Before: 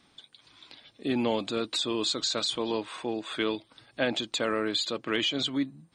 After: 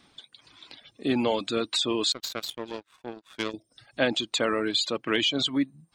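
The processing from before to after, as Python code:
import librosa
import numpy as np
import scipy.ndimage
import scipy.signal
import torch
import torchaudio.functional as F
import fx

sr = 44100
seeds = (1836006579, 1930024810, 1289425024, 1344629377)

y = fx.dereverb_blind(x, sr, rt60_s=0.59)
y = fx.power_curve(y, sr, exponent=2.0, at=(2.12, 3.54))
y = fx.spec_box(y, sr, start_s=3.51, length_s=0.27, low_hz=750.0, high_hz=5000.0, gain_db=-16)
y = y * librosa.db_to_amplitude(3.5)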